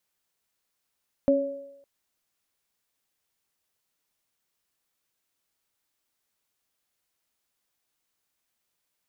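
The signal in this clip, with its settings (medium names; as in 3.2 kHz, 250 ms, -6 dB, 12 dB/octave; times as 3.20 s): sine partials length 0.56 s, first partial 274 Hz, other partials 559 Hz, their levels 2 dB, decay 0.62 s, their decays 0.90 s, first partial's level -19 dB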